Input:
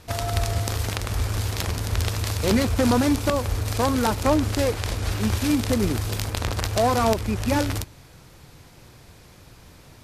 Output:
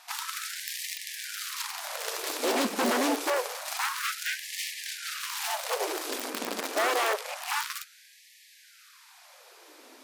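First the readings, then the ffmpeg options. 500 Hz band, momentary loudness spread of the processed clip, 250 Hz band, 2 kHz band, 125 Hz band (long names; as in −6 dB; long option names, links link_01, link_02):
−7.5 dB, 8 LU, −13.0 dB, 0.0 dB, below −35 dB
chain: -af "aeval=exprs='0.1*(abs(mod(val(0)/0.1+3,4)-2)-1)':channel_layout=same,afftfilt=real='re*gte(b*sr/1024,210*pow(1700/210,0.5+0.5*sin(2*PI*0.27*pts/sr)))':imag='im*gte(b*sr/1024,210*pow(1700/210,0.5+0.5*sin(2*PI*0.27*pts/sr)))':win_size=1024:overlap=0.75"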